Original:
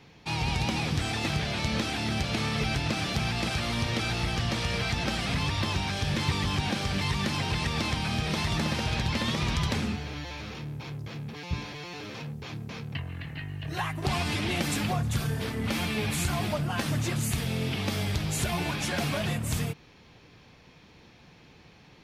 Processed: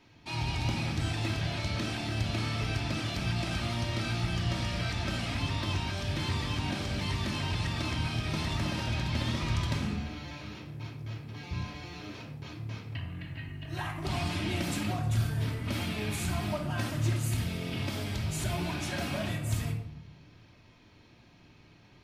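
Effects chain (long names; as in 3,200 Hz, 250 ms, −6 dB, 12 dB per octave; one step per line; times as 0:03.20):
rectangular room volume 1,900 cubic metres, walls furnished, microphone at 2.8 metres
level −7.5 dB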